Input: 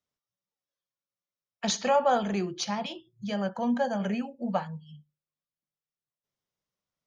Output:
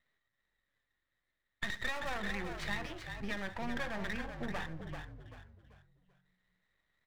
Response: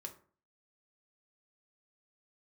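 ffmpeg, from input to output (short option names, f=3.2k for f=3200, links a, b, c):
-filter_complex "[0:a]lowpass=f=1.9k:t=q:w=14,acrossover=split=1400[a][b];[a]asoftclip=type=hard:threshold=-28.5dB[c];[c][b]amix=inputs=2:normalize=0,acompressor=threshold=-48dB:ratio=2.5,aeval=exprs='max(val(0),0)':c=same,asplit=5[d][e][f][g][h];[e]adelay=387,afreqshift=-46,volume=-7dB[i];[f]adelay=774,afreqshift=-92,volume=-16.4dB[j];[g]adelay=1161,afreqshift=-138,volume=-25.7dB[k];[h]adelay=1548,afreqshift=-184,volume=-35.1dB[l];[d][i][j][k][l]amix=inputs=5:normalize=0,volume=8dB"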